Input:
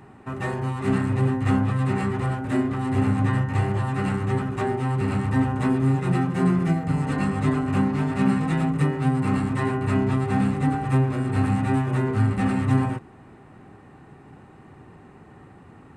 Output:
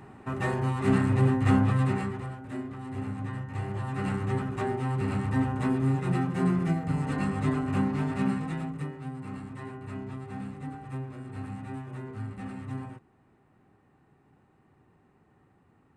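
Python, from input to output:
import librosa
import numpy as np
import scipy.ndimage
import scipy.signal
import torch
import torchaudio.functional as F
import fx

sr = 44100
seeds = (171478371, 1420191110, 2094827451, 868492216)

y = fx.gain(x, sr, db=fx.line((1.8, -1.0), (2.32, -13.0), (3.41, -13.0), (4.1, -5.0), (8.11, -5.0), (9.06, -16.0)))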